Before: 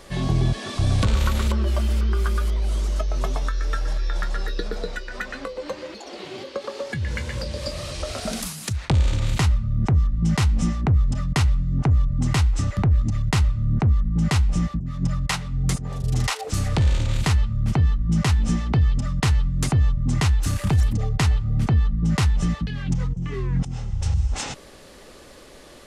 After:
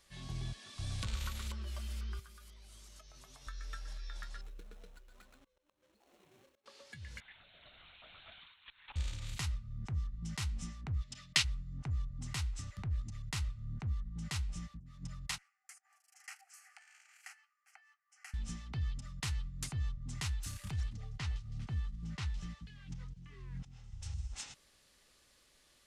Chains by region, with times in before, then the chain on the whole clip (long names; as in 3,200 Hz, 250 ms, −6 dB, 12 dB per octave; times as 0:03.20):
0:02.19–0:03.47: high-pass filter 64 Hz 24 dB per octave + high-shelf EQ 7,100 Hz +5.5 dB + downward compressor 10 to 1, threshold −28 dBFS
0:04.41–0:06.66: running median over 25 samples + notch filter 4,700 Hz, Q 9.3 + volume swells 409 ms
0:07.20–0:08.96: Butterworth high-pass 660 Hz + comb filter 3.3 ms, depth 53% + linear-prediction vocoder at 8 kHz whisper
0:11.01–0:11.43: meter weighting curve D + steady tone 610 Hz −52 dBFS
0:15.38–0:18.34: Butterworth high-pass 720 Hz 96 dB per octave + high-shelf EQ 4,800 Hz −6 dB + phaser with its sweep stopped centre 1,000 Hz, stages 6
0:20.71–0:23.84: variable-slope delta modulation 64 kbit/s + high-frequency loss of the air 100 metres + delay with a high-pass on its return 161 ms, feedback 59%, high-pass 4,400 Hz, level −13 dB
whole clip: guitar amp tone stack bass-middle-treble 5-5-5; expander for the loud parts 1.5 to 1, over −42 dBFS; level −1 dB